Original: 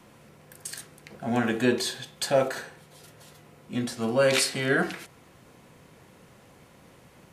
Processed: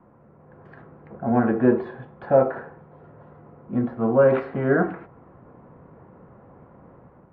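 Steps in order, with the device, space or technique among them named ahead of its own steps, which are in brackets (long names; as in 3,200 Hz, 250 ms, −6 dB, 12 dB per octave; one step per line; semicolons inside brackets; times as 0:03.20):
action camera in a waterproof case (low-pass filter 1,300 Hz 24 dB per octave; automatic gain control gain up to 6 dB; AAC 48 kbit/s 44,100 Hz)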